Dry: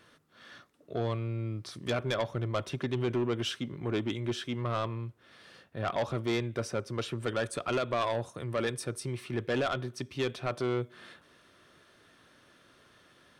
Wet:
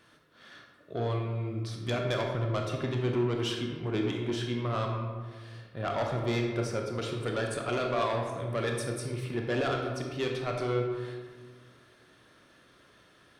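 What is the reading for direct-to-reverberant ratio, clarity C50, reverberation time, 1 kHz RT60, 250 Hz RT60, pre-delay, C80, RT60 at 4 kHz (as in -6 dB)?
1.0 dB, 3.0 dB, 1.5 s, 1.4 s, 1.9 s, 21 ms, 5.0 dB, 0.80 s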